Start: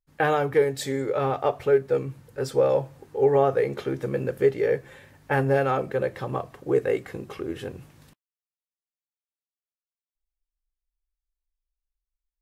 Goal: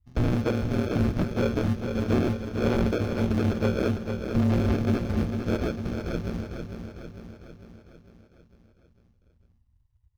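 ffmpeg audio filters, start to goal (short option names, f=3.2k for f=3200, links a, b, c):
-filter_complex "[0:a]aemphasis=mode=reproduction:type=bsi,bandreject=f=60:t=h:w=6,bandreject=f=120:t=h:w=6,bandreject=f=180:t=h:w=6,bandreject=f=240:t=h:w=6,bandreject=f=300:t=h:w=6,bandreject=f=360:t=h:w=6,bandreject=f=420:t=h:w=6,aresample=11025,acrusher=samples=14:mix=1:aa=0.000001,aresample=44100,bass=f=250:g=10,treble=f=4k:g=3,asoftclip=type=hard:threshold=-12dB,acrossover=split=3100[a][b];[b]acompressor=threshold=-45dB:ratio=4:attack=1:release=60[c];[a][c]amix=inputs=2:normalize=0,acrusher=bits=8:mode=log:mix=0:aa=0.000001,aeval=exprs='val(0)*sin(2*PI*51*n/s)':c=same,asetrate=53802,aresample=44100,aecho=1:1:451|902|1353|1804|2255|2706|3157:0.447|0.25|0.14|0.0784|0.0439|0.0246|0.0138,volume=-5dB"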